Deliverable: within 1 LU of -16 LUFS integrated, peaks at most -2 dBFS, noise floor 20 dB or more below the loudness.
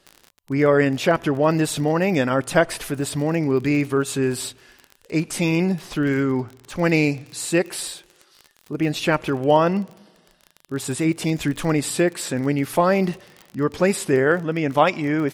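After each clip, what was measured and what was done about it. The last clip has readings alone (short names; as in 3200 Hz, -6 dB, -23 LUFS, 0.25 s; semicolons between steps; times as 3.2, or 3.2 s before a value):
ticks 30/s; loudness -21.5 LUFS; peak -2.5 dBFS; loudness target -16.0 LUFS
-> de-click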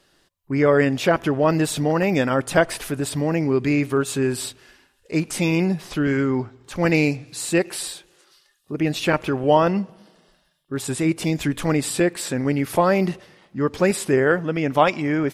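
ticks 0.13/s; loudness -21.5 LUFS; peak -2.5 dBFS; loudness target -16.0 LUFS
-> gain +5.5 dB; limiter -2 dBFS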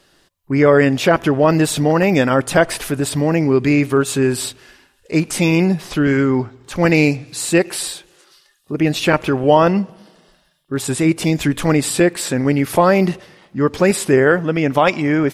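loudness -16.0 LUFS; peak -2.0 dBFS; noise floor -58 dBFS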